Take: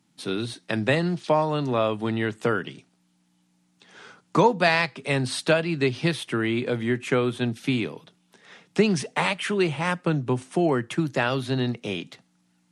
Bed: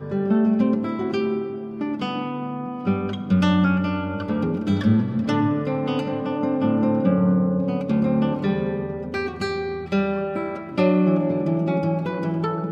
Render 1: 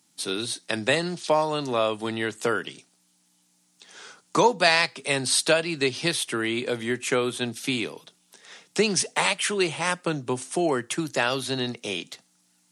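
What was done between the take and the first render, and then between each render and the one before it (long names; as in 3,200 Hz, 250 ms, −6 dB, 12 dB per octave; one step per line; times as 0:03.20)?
bass and treble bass −9 dB, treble +12 dB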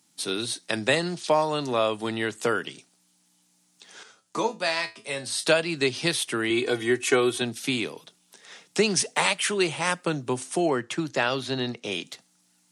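0:04.03–0:05.44: tuned comb filter 110 Hz, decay 0.24 s, mix 80%
0:06.50–0:07.42: comb filter 2.7 ms, depth 90%
0:10.68–0:11.92: high-frequency loss of the air 72 metres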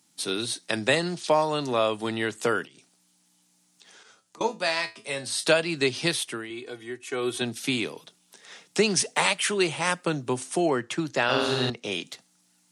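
0:02.65–0:04.41: downward compressor 8 to 1, threshold −48 dBFS
0:05.99–0:07.59: duck −13 dB, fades 0.48 s equal-power
0:11.24–0:11.70: flutter between parallel walls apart 8.1 metres, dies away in 1.2 s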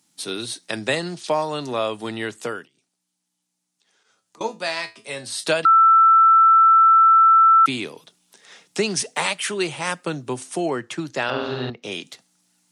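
0:02.29–0:04.46: duck −12.5 dB, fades 0.44 s
0:05.65–0:07.66: beep over 1,330 Hz −9.5 dBFS
0:11.30–0:11.83: high-frequency loss of the air 250 metres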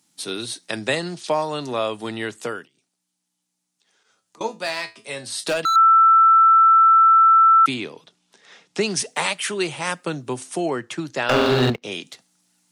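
0:04.54–0:05.76: hard clipping −17.5 dBFS
0:07.74–0:08.81: high-frequency loss of the air 72 metres
0:11.29–0:11.82: leveller curve on the samples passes 3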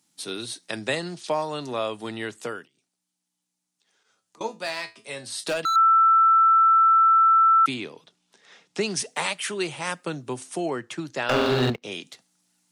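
level −4 dB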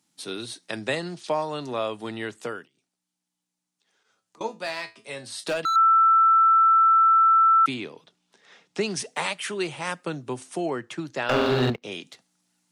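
high-shelf EQ 4,400 Hz −5 dB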